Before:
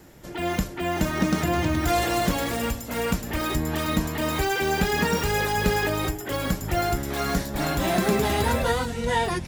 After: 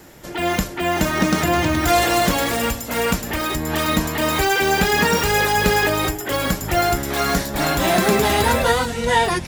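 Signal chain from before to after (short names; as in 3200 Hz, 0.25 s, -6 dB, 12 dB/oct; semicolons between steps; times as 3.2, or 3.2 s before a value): low shelf 350 Hz -6 dB; 3.29–3.7 compressor, threshold -27 dBFS, peak gain reduction 3.5 dB; gain +8 dB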